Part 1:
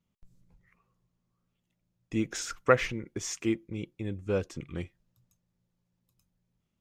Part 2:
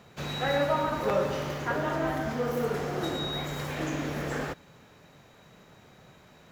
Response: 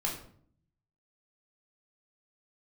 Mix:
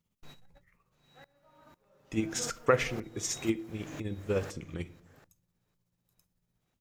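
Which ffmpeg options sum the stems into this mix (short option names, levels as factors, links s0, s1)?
-filter_complex "[0:a]tremolo=f=16:d=0.54,volume=0.891,asplit=3[s0][s1][s2];[s1]volume=0.178[s3];[1:a]aeval=exprs='val(0)*pow(10,-26*if(lt(mod(-2*n/s,1),2*abs(-2)/1000),1-mod(-2*n/s,1)/(2*abs(-2)/1000),(mod(-2*n/s,1)-2*abs(-2)/1000)/(1-2*abs(-2)/1000))/20)':c=same,volume=0.376,asplit=2[s4][s5];[s5]volume=0.158[s6];[s2]apad=whole_len=287298[s7];[s4][s7]sidechaingate=range=0.00631:threshold=0.001:ratio=16:detection=peak[s8];[2:a]atrim=start_sample=2205[s9];[s3][s9]afir=irnorm=-1:irlink=0[s10];[s6]aecho=0:1:744:1[s11];[s0][s8][s10][s11]amix=inputs=4:normalize=0,highshelf=f=6000:g=7.5"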